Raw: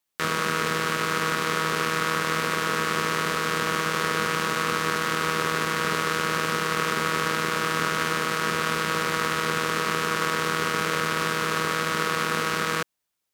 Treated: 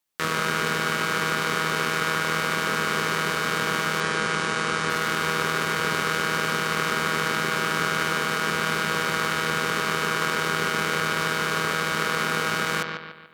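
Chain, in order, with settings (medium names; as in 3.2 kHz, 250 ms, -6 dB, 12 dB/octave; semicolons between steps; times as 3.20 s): 4.00–4.90 s: Chebyshev low-pass 9.8 kHz, order 5; on a send: bucket-brigade echo 145 ms, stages 4096, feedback 43%, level -6 dB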